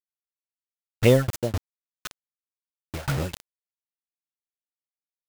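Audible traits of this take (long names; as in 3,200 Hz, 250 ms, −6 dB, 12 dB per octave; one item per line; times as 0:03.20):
phaser sweep stages 8, 2.9 Hz, lowest notch 270–2,300 Hz
a quantiser's noise floor 6 bits, dither none
tremolo saw down 3.9 Hz, depth 100%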